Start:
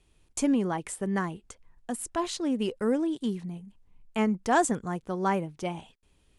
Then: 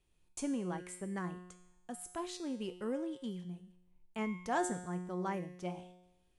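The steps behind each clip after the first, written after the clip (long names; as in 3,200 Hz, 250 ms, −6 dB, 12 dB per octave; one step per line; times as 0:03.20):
tuned comb filter 180 Hz, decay 0.91 s, harmonics all, mix 80%
level +1.5 dB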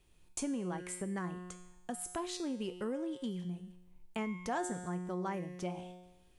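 downward compressor 2.5 to 1, threshold −46 dBFS, peak gain reduction 11.5 dB
level +8 dB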